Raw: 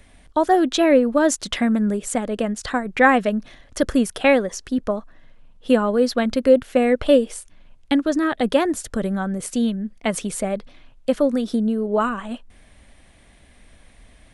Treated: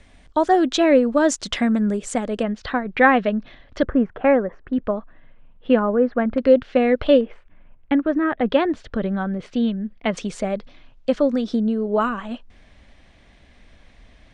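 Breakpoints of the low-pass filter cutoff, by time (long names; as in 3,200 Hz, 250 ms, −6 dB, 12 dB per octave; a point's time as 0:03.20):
low-pass filter 24 dB per octave
7,800 Hz
from 0:02.43 4,100 Hz
from 0:03.83 1,800 Hz
from 0:04.73 3,000 Hz
from 0:05.79 1,900 Hz
from 0:06.38 4,600 Hz
from 0:07.21 2,400 Hz
from 0:08.46 3,800 Hz
from 0:10.17 6,200 Hz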